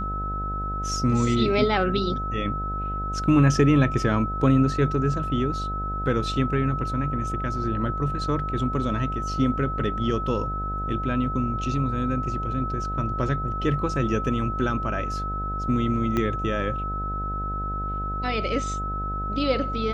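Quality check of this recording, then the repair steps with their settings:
buzz 50 Hz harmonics 16 -31 dBFS
tone 1300 Hz -29 dBFS
16.17 pop -13 dBFS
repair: de-click; de-hum 50 Hz, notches 16; notch 1300 Hz, Q 30

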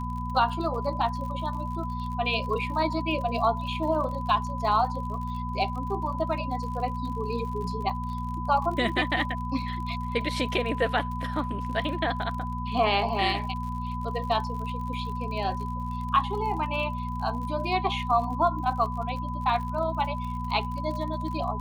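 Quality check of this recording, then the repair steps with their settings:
crackle 52/s -36 dBFS
hum 60 Hz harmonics 4 -33 dBFS
tone 1000 Hz -34 dBFS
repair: de-click; notch 1000 Hz, Q 30; de-hum 60 Hz, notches 4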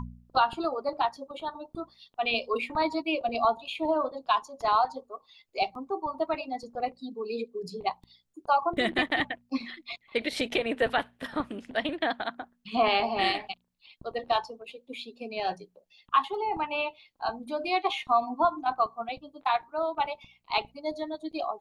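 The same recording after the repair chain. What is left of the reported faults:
none

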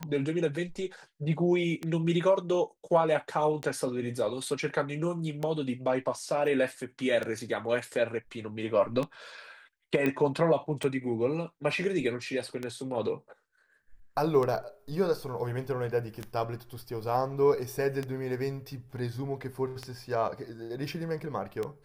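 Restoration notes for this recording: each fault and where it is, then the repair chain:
tick 33 1/3 rpm -19 dBFS
10.06 pop -17 dBFS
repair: de-click

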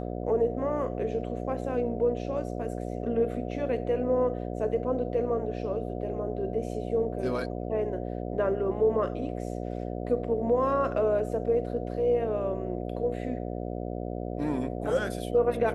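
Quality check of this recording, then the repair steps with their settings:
buzz 60 Hz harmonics 12 -34 dBFS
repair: de-hum 60 Hz, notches 12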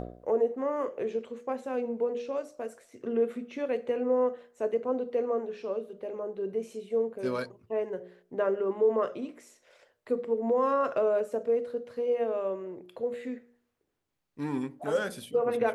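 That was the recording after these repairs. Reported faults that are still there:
none

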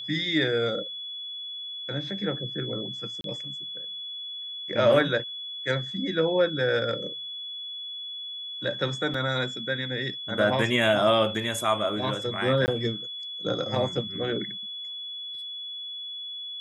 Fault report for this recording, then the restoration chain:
tone 3400 Hz -34 dBFS
3.21–3.24 gap 32 ms
9.14 gap 4 ms
12.66–12.68 gap 19 ms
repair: notch 3400 Hz, Q 30; interpolate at 3.21, 32 ms; interpolate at 9.14, 4 ms; interpolate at 12.66, 19 ms

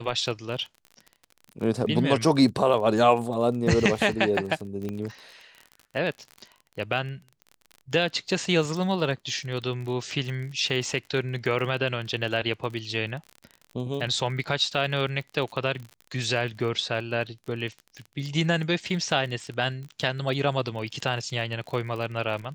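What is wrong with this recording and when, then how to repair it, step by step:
crackle 38/s -34 dBFS
4.89 pop -21 dBFS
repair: de-click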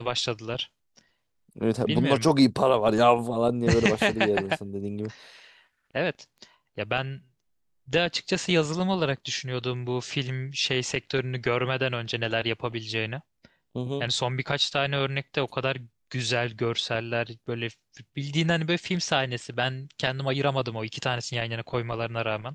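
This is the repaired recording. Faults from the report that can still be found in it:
none

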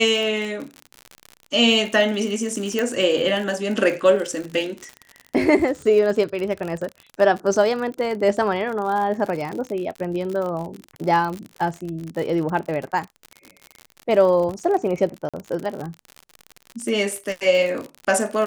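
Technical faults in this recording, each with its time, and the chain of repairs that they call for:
crackle 58/s -27 dBFS
2.79 pop -10 dBFS
15.29–15.34 gap 46 ms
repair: de-click; interpolate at 15.29, 46 ms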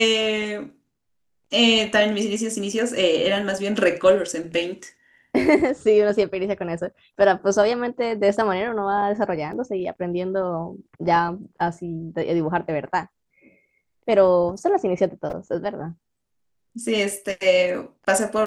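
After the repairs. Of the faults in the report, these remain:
2.79 pop

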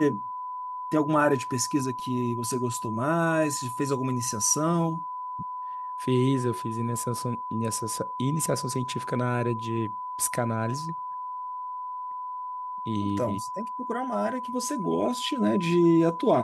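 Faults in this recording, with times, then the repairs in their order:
tone 1000 Hz -32 dBFS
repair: notch 1000 Hz, Q 30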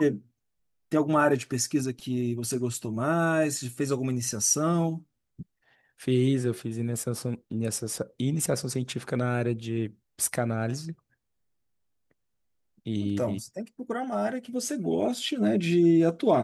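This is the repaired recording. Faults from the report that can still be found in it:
none

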